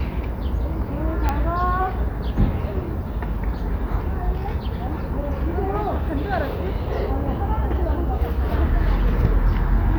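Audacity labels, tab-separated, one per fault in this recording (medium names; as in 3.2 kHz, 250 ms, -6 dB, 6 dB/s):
1.290000	1.290000	pop -9 dBFS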